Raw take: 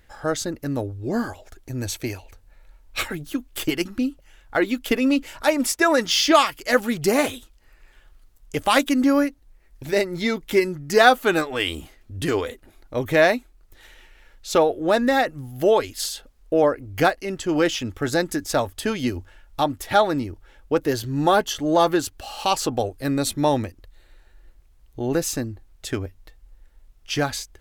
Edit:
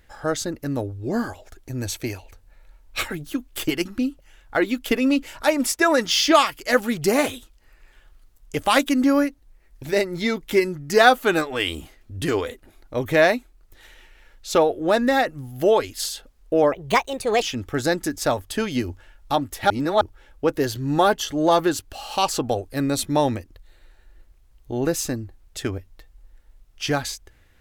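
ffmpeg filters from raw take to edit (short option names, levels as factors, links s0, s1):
-filter_complex "[0:a]asplit=5[s0][s1][s2][s3][s4];[s0]atrim=end=16.724[s5];[s1]atrim=start=16.72:end=17.7,asetpts=PTS-STARTPTS,asetrate=61740,aresample=44100,atrim=end_sample=30870,asetpts=PTS-STARTPTS[s6];[s2]atrim=start=17.696:end=19.982[s7];[s3]atrim=start=19.978:end=20.292,asetpts=PTS-STARTPTS,areverse[s8];[s4]atrim=start=20.288[s9];[s5][s6]acrossfade=d=0.004:c1=hsin:c2=hsin[s10];[s10][s7]acrossfade=d=0.004:c1=hsin:c2=hsin[s11];[s11][s8]acrossfade=d=0.004:c1=hsin:c2=hsin[s12];[s12][s9]acrossfade=d=0.004:c1=hsin:c2=hsin"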